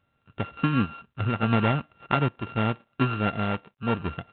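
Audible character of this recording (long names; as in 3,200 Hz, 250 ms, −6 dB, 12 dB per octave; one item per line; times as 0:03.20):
a buzz of ramps at a fixed pitch in blocks of 32 samples
sample-and-hold tremolo
G.726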